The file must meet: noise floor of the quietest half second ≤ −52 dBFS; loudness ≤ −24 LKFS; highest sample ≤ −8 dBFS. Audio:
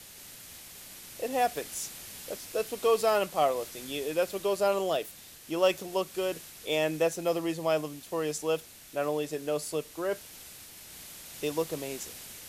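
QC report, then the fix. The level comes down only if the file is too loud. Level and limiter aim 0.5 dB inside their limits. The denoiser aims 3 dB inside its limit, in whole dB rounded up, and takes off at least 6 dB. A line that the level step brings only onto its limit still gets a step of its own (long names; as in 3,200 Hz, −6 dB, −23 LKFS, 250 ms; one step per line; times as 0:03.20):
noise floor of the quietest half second −48 dBFS: out of spec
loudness −31.0 LKFS: in spec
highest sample −12.5 dBFS: in spec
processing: broadband denoise 7 dB, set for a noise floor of −48 dBFS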